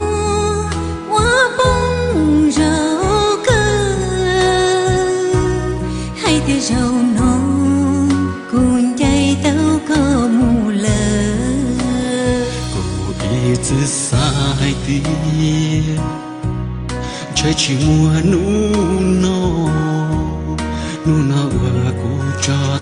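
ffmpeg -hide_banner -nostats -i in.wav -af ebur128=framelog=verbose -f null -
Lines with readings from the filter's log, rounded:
Integrated loudness:
  I:         -15.5 LUFS
  Threshold: -25.5 LUFS
Loudness range:
  LRA:         3.0 LU
  Threshold: -35.4 LUFS
  LRA low:   -17.0 LUFS
  LRA high:  -14.0 LUFS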